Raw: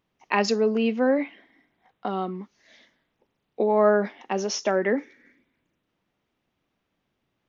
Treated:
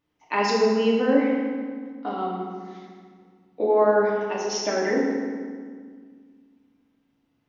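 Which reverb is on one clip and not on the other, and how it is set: FDN reverb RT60 1.8 s, low-frequency decay 1.5×, high-frequency decay 0.7×, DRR -5 dB; gain -5 dB

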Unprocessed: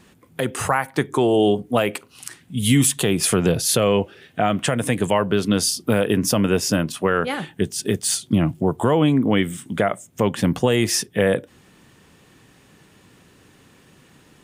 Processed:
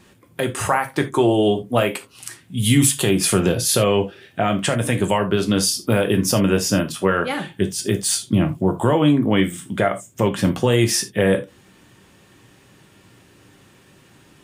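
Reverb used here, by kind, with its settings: non-linear reverb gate 0.1 s falling, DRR 5 dB

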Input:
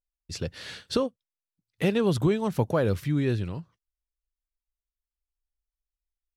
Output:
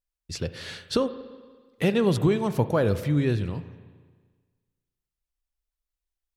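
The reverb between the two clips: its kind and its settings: spring tank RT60 1.5 s, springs 34/48 ms, chirp 55 ms, DRR 12 dB; gain +1.5 dB

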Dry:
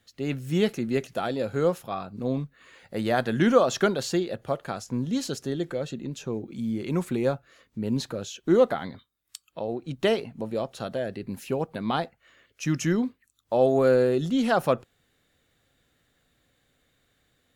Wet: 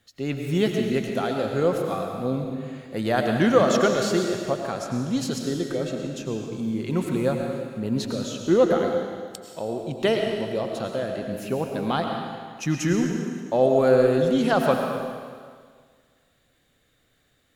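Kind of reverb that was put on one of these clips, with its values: digital reverb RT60 1.8 s, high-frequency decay 1×, pre-delay 65 ms, DRR 2.5 dB; gain +1 dB

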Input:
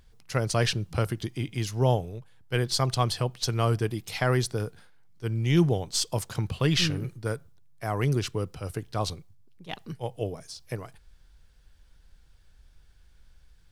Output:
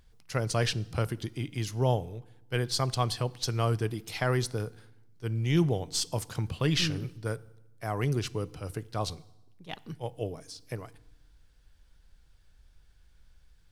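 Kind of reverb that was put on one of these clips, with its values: FDN reverb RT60 0.95 s, low-frequency decay 1.45×, high-frequency decay 0.9×, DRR 19.5 dB; gain -3 dB

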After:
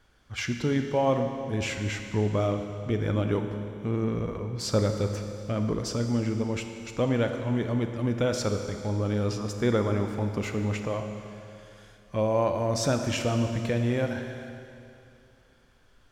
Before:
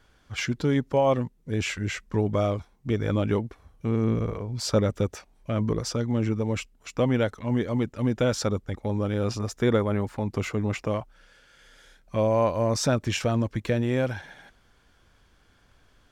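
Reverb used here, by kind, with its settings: Schroeder reverb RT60 2.7 s, combs from 26 ms, DRR 5.5 dB; gain -2.5 dB

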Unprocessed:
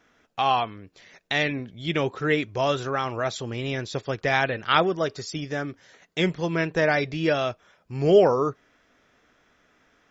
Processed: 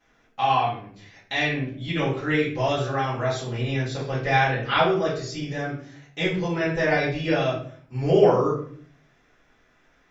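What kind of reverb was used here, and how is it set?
shoebox room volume 61 m³, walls mixed, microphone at 2.1 m; gain -9.5 dB

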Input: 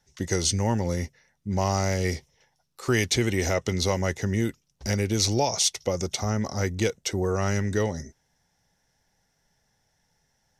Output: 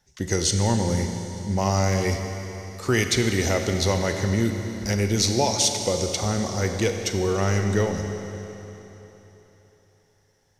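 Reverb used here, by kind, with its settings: Schroeder reverb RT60 3.6 s, combs from 31 ms, DRR 5 dB; gain +1.5 dB

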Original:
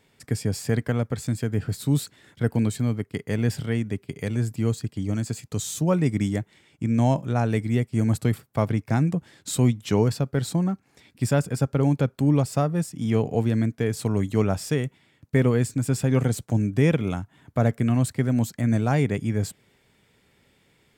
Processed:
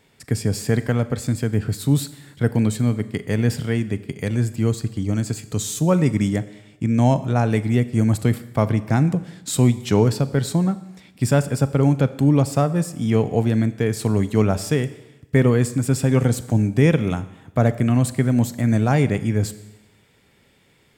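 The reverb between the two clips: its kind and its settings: Schroeder reverb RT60 0.97 s, combs from 29 ms, DRR 14 dB; gain +4 dB

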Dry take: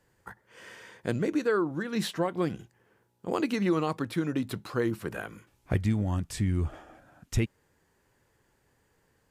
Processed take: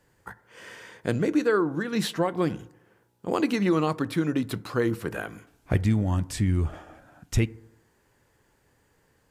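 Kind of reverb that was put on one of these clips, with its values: FDN reverb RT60 0.86 s, low-frequency decay 0.9×, high-frequency decay 0.3×, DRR 17.5 dB; gain +3.5 dB

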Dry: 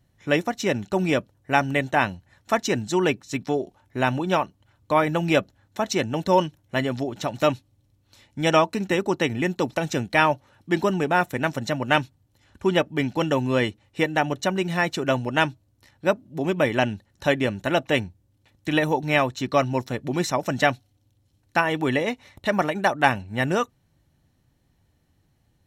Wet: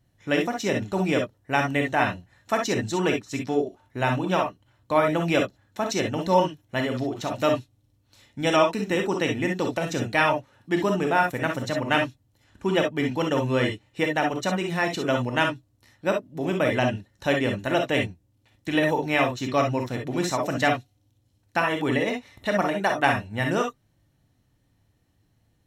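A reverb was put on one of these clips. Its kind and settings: non-linear reverb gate 80 ms rising, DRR 2.5 dB; gain -3 dB

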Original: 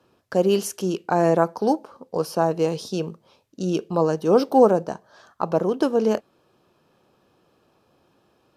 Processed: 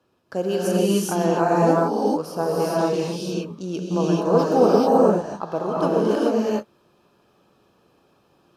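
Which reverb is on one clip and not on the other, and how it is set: non-linear reverb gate 0.46 s rising, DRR -7 dB; gain -5.5 dB

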